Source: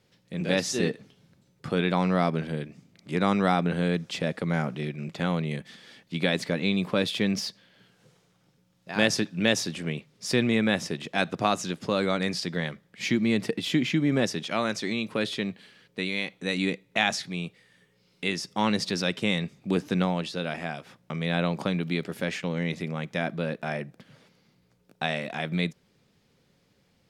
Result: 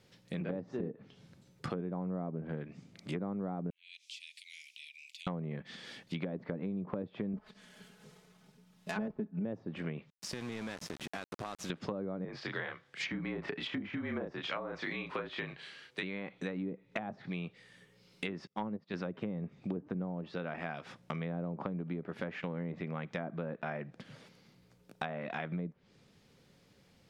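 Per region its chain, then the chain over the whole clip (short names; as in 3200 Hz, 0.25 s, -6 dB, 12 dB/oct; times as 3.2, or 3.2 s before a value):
3.7–5.27 steep high-pass 2300 Hz 72 dB/oct + compressor 3:1, threshold -50 dBFS
7.33–9.45 switching dead time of 0.089 ms + comb 4.7 ms, depth 80%
10.1–11.7 high shelf 3000 Hz -5.5 dB + compressor 5:1, threshold -38 dBFS + sample gate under -42 dBFS
12.25–16.03 weighting filter A + frequency shift -41 Hz + doubler 30 ms -3.5 dB
18.47–18.94 LPF 3500 Hz 6 dB/oct + upward expander 2.5:1, over -41 dBFS
whole clip: treble ducked by the level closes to 530 Hz, closed at -22.5 dBFS; dynamic EQ 1200 Hz, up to +4 dB, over -47 dBFS, Q 0.98; compressor 4:1, threshold -38 dBFS; gain +1.5 dB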